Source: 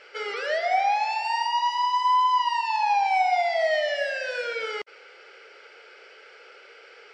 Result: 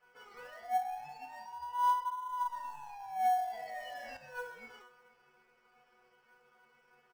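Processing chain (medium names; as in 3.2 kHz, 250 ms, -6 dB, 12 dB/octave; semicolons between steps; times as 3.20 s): 2.28–2.89 s: median filter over 15 samples; on a send: delay 478 ms -23.5 dB; on the sum: peak limiter -20.5 dBFS, peak gain reduction 6 dB; chord resonator B3 fifth, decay 0.45 s; in parallel at -9 dB: sample-and-hold 18×; on the sum: graphic EQ 250/500/1000/2000/4000 Hz -5/-4/+9/-5/-9 dB; hard clipper -23.5 dBFS, distortion -41 dB; 3.47–4.17 s: level flattener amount 50%; trim +1 dB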